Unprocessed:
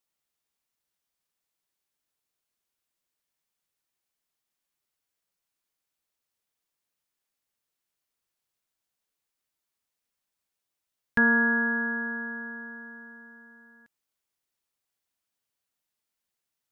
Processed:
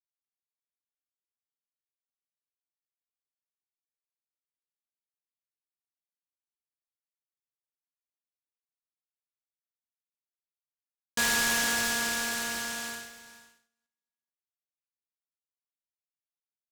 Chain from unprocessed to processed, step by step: gate -44 dBFS, range -39 dB; HPF 230 Hz; band shelf 1000 Hz +9 dB; notch 1500 Hz, Q 6.4; in parallel at 0 dB: compressor, threshold -34 dBFS, peak gain reduction 18 dB; on the sum: soft clip -21.5 dBFS, distortion -8 dB; air absorption 410 m; echo 0.442 s -15.5 dB; on a send at -11.5 dB: reverb RT60 0.35 s, pre-delay 3 ms; on the sum: noise-modulated delay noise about 4800 Hz, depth 0.092 ms

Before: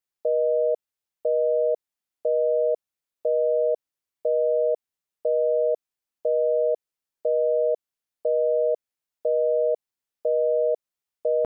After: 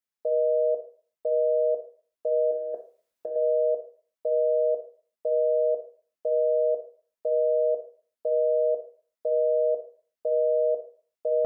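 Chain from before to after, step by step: 2.51–3.36 negative-ratio compressor -27 dBFS, ratio -0.5; on a send: reverb RT60 0.50 s, pre-delay 3 ms, DRR 3 dB; on the sum: gain -4.5 dB

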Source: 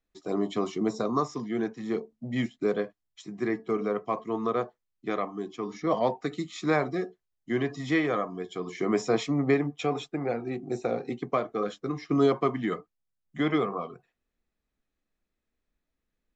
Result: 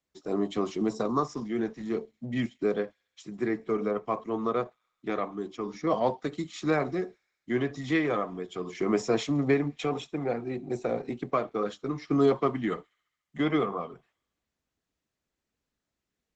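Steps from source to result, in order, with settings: HPF 53 Hz 24 dB/oct; thin delay 68 ms, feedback 69%, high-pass 3000 Hz, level -23 dB; Opus 12 kbps 48000 Hz

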